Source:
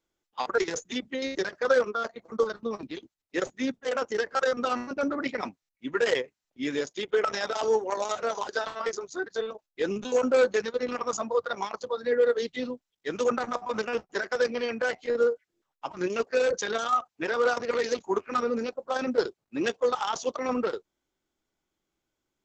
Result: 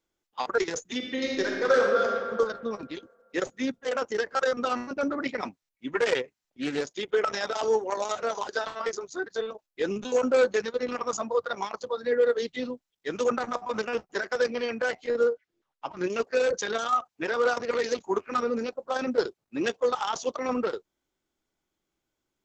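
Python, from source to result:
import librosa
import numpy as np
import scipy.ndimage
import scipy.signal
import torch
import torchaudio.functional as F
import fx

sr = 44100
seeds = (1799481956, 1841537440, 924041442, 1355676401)

y = fx.reverb_throw(x, sr, start_s=0.96, length_s=1.2, rt60_s=1.9, drr_db=-0.5)
y = fx.doppler_dist(y, sr, depth_ms=0.19, at=(5.95, 6.97))
y = fx.lowpass(y, sr, hz=5400.0, slope=12, at=(15.29, 16.04))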